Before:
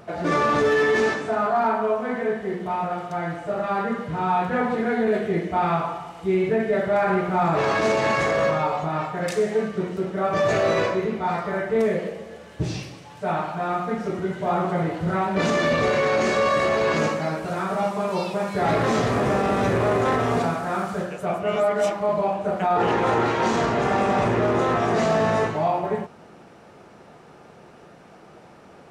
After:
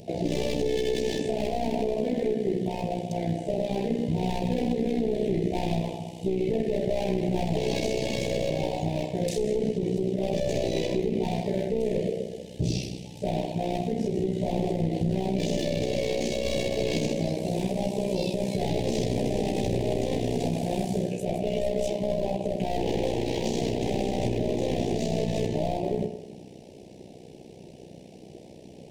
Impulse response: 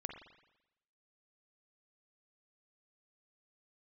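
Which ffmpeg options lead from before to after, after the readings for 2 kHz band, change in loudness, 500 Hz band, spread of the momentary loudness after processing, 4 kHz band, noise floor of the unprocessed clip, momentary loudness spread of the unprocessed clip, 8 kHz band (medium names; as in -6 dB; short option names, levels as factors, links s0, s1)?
-14.5 dB, -5.5 dB, -5.0 dB, 7 LU, -1.5 dB, -48 dBFS, 7 LU, -0.5 dB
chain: -filter_complex "[0:a]asplit=2[s0][s1];[1:a]atrim=start_sample=2205[s2];[s1][s2]afir=irnorm=-1:irlink=0,volume=1.78[s3];[s0][s3]amix=inputs=2:normalize=0,aeval=exprs='clip(val(0),-1,0.133)':c=same,tremolo=f=62:d=0.75,asuperstop=centerf=1300:order=4:qfactor=0.51,alimiter=limit=0.15:level=0:latency=1:release=71"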